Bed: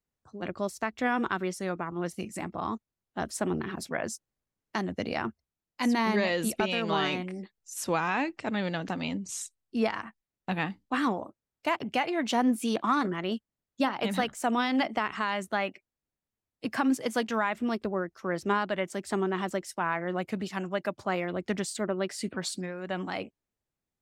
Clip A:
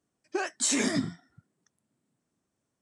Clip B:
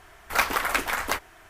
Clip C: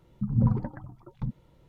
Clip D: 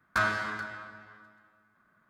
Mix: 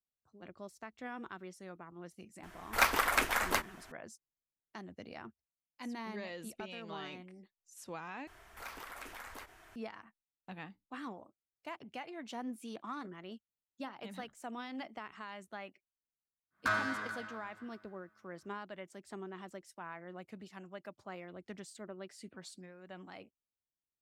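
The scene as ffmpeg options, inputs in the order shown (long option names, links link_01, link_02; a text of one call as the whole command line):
ffmpeg -i bed.wav -i cue0.wav -i cue1.wav -i cue2.wav -i cue3.wav -filter_complex "[2:a]asplit=2[link_01][link_02];[0:a]volume=-16.5dB[link_03];[link_02]acompressor=threshold=-41dB:ratio=2.5:attack=0.4:release=91:knee=1:detection=peak[link_04];[4:a]lowshelf=frequency=79:gain=-7.5[link_05];[link_03]asplit=2[link_06][link_07];[link_06]atrim=end=8.274[link_08];[link_04]atrim=end=1.49,asetpts=PTS-STARTPTS,volume=-7.5dB[link_09];[link_07]atrim=start=9.756[link_10];[link_01]atrim=end=1.49,asetpts=PTS-STARTPTS,volume=-4.5dB,afade=type=in:duration=0.004:curve=hsin,afade=type=out:start_time=1.486:duration=0.004:curve=hsin,adelay=2430[link_11];[link_05]atrim=end=2.09,asetpts=PTS-STARTPTS,volume=-5dB,afade=type=in:duration=0.1,afade=type=out:start_time=1.99:duration=0.1,adelay=16500[link_12];[link_08][link_09]acrossfade=duration=0.004:curve1=hsin:curve2=hsin[link_13];[link_13][link_10]acrossfade=duration=0.004:curve1=hsin:curve2=hsin[link_14];[link_14][link_11][link_12]amix=inputs=3:normalize=0" out.wav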